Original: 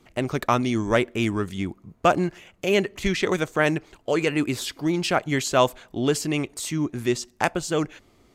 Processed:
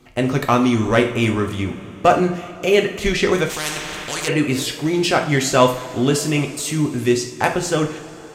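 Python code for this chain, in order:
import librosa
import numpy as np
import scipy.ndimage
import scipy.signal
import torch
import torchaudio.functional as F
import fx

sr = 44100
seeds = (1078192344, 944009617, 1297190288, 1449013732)

y = 10.0 ** (-8.5 / 20.0) * np.tanh(x / 10.0 ** (-8.5 / 20.0))
y = fx.rev_double_slope(y, sr, seeds[0], early_s=0.43, late_s=3.8, knee_db=-18, drr_db=2.5)
y = fx.spectral_comp(y, sr, ratio=4.0, at=(3.49, 4.27), fade=0.02)
y = y * 10.0 ** (4.5 / 20.0)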